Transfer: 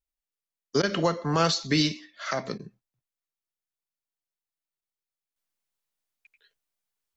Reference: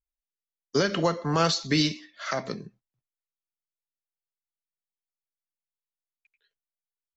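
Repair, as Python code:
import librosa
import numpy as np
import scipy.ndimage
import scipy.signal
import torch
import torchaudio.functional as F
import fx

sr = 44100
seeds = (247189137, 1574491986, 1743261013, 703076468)

y = fx.fix_interpolate(x, sr, at_s=(0.82, 2.58, 4.81), length_ms=11.0)
y = fx.fix_level(y, sr, at_s=5.36, step_db=-8.5)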